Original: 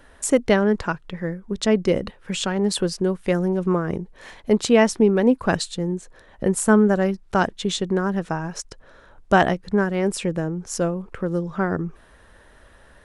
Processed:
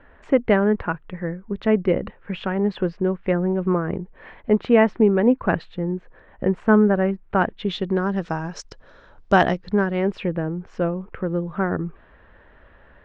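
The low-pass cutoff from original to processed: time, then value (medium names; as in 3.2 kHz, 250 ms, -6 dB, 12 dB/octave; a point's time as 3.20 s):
low-pass 24 dB/octave
7.37 s 2.5 kHz
8.28 s 5.6 kHz
9.53 s 5.6 kHz
10.28 s 2.8 kHz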